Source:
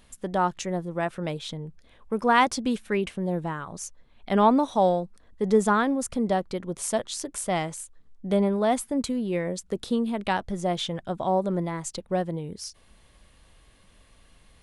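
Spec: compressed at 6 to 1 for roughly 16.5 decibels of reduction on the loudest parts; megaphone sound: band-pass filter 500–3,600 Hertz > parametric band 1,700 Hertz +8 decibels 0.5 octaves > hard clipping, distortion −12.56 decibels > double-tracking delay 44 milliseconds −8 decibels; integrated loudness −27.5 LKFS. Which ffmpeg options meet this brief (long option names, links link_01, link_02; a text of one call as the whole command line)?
ffmpeg -i in.wav -filter_complex "[0:a]acompressor=threshold=-33dB:ratio=6,highpass=500,lowpass=3600,equalizer=frequency=1700:width_type=o:width=0.5:gain=8,asoftclip=type=hard:threshold=-31.5dB,asplit=2[link_01][link_02];[link_02]adelay=44,volume=-8dB[link_03];[link_01][link_03]amix=inputs=2:normalize=0,volume=13.5dB" out.wav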